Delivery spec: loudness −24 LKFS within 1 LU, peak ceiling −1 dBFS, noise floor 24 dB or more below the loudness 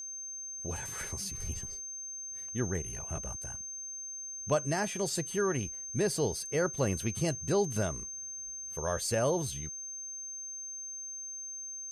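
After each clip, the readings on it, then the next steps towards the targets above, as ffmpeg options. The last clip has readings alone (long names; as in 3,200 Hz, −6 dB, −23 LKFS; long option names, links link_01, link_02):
interfering tone 6,300 Hz; level of the tone −39 dBFS; integrated loudness −34.0 LKFS; sample peak −16.5 dBFS; target loudness −24.0 LKFS
→ -af "bandreject=frequency=6300:width=30"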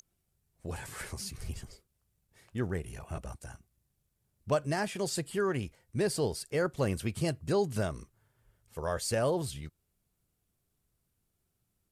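interfering tone none found; integrated loudness −33.5 LKFS; sample peak −17.5 dBFS; target loudness −24.0 LKFS
→ -af "volume=9.5dB"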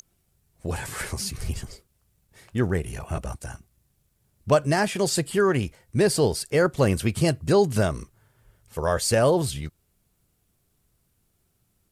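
integrated loudness −24.5 LKFS; sample peak −8.0 dBFS; background noise floor −70 dBFS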